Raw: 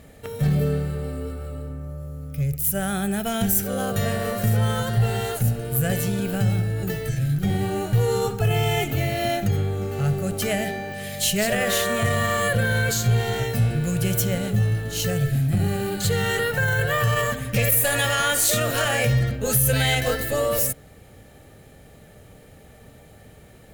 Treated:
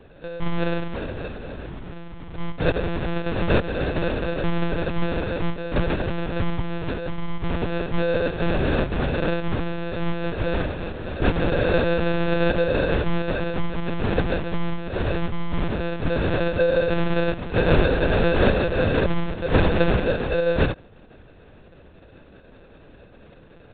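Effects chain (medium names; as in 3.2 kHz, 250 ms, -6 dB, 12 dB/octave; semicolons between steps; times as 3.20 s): high-pass 63 Hz; bass shelf 400 Hz -5 dB; sample-and-hold 42×; monotone LPC vocoder at 8 kHz 170 Hz; trim +3.5 dB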